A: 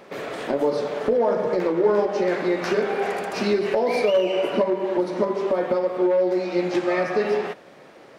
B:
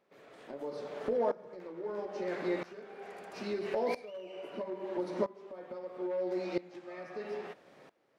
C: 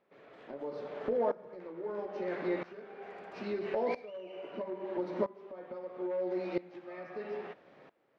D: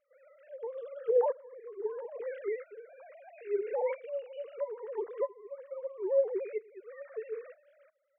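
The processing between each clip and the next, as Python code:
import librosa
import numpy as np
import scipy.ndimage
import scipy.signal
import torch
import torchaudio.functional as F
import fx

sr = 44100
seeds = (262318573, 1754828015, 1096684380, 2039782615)

y1 = fx.tremolo_decay(x, sr, direction='swelling', hz=0.76, depth_db=20)
y1 = y1 * librosa.db_to_amplitude(-8.5)
y2 = scipy.signal.sosfilt(scipy.signal.butter(2, 3300.0, 'lowpass', fs=sr, output='sos'), y1)
y3 = fx.sine_speech(y2, sr)
y3 = y3 * librosa.db_to_amplitude(2.0)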